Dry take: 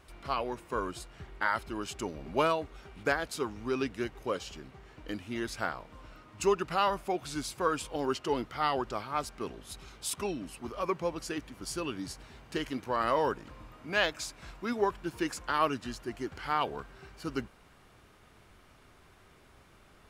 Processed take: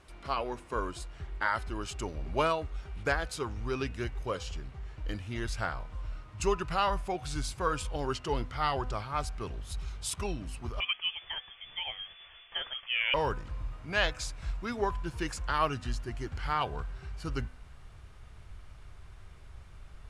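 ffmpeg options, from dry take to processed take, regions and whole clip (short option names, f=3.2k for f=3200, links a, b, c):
-filter_complex "[0:a]asettb=1/sr,asplit=3[a][b][c];[a]atrim=end=10.804[d];[b]atrim=start=10.8:end=13.14,asetpts=PTS-STARTPTS,afade=t=in:d=0.004:c=qsin,afade=t=out:st=2.336:d=0.004:c=qsin,equalizer=f=140:t=o:w=1.3:g=-12.5,lowpass=f=3k:t=q:w=0.5098,lowpass=f=3k:t=q:w=0.6013,lowpass=f=3k:t=q:w=0.9,lowpass=f=3k:t=q:w=2.563,afreqshift=-3500[e];[c]atrim=start=13.136[f];[d][e]acrossfade=d=0.004:c1=hsin:c2=qsin[g];[g][f]acrossfade=d=0.004:c1=qsin:c2=hsin,lowpass=f=11k:w=0.5412,lowpass=f=11k:w=1.3066,bandreject=f=251.8:t=h:w=4,bandreject=f=503.6:t=h:w=4,bandreject=f=755.4:t=h:w=4,bandreject=f=1.0072k:t=h:w=4,bandreject=f=1.259k:t=h:w=4,bandreject=f=1.5108k:t=h:w=4,bandreject=f=1.7626k:t=h:w=4,bandreject=f=2.0144k:t=h:w=4,bandreject=f=2.2662k:t=h:w=4,bandreject=f=2.518k:t=h:w=4,bandreject=f=2.7698k:t=h:w=4,asubboost=boost=8:cutoff=91"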